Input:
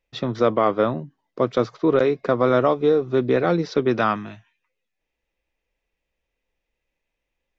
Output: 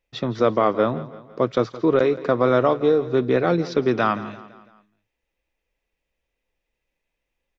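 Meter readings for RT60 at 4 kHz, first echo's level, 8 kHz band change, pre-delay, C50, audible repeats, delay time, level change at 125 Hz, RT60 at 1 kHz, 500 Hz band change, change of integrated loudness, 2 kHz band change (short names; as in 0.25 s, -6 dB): none, -17.0 dB, n/a, none, none, 3, 0.168 s, 0.0 dB, none, 0.0 dB, 0.0 dB, 0.0 dB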